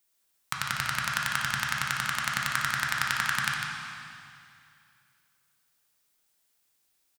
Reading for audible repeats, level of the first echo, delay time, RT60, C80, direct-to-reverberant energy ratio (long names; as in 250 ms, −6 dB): 1, −7.0 dB, 151 ms, 2.5 s, 0.5 dB, −2.5 dB